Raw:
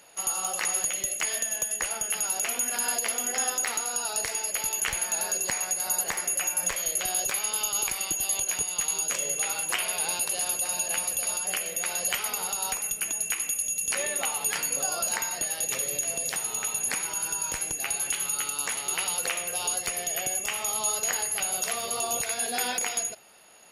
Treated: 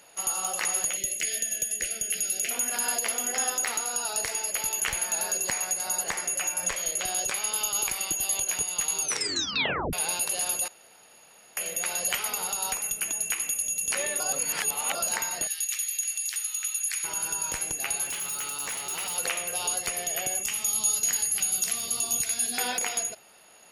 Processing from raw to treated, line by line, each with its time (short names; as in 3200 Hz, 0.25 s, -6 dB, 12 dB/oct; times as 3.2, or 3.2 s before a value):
0.97–2.51 Butterworth band-stop 990 Hz, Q 0.75
5.77–7.44 LPF 11000 Hz 24 dB/oct
9.01 tape stop 0.92 s
10.68–11.57 room tone
14.2–14.95 reverse
15.47–17.04 Bessel high-pass 2300 Hz, order 4
18.05–19.16 overloaded stage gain 29 dB
20.43–22.58 EQ curve 280 Hz 0 dB, 530 Hz -14 dB, 6200 Hz +3 dB